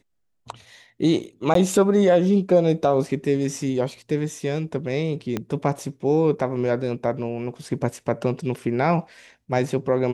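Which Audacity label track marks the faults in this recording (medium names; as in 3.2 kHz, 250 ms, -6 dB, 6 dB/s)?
1.540000	1.550000	dropout 13 ms
5.370000	5.370000	pop -12 dBFS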